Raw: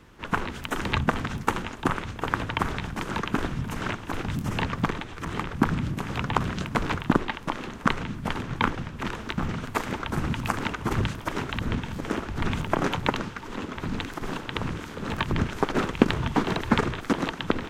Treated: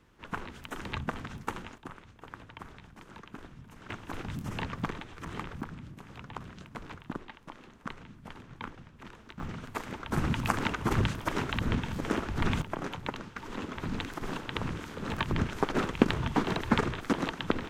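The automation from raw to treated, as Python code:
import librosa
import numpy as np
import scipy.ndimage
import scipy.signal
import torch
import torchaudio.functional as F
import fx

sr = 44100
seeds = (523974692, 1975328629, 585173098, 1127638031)

y = fx.gain(x, sr, db=fx.steps((0.0, -10.5), (1.78, -19.5), (3.9, -8.0), (5.61, -17.0), (9.4, -9.0), (10.11, -1.5), (12.62, -11.0), (13.36, -4.0)))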